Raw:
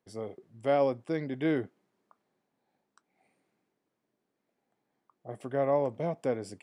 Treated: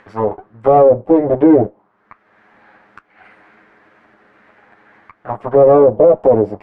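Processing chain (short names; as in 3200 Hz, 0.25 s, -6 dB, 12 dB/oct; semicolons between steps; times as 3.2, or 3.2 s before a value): minimum comb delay 9.6 ms; upward compressor, threshold -48 dBFS; auto-wah 530–1800 Hz, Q 2.4, down, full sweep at -31.5 dBFS; tilt -4 dB/oct; maximiser +27.5 dB; gain -1 dB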